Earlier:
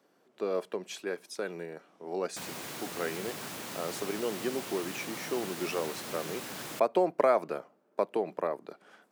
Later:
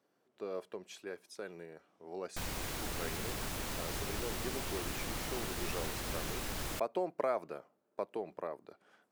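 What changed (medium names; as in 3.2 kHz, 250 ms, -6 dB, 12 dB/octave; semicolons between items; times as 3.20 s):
speech -9.0 dB; master: remove high-pass 140 Hz 24 dB/octave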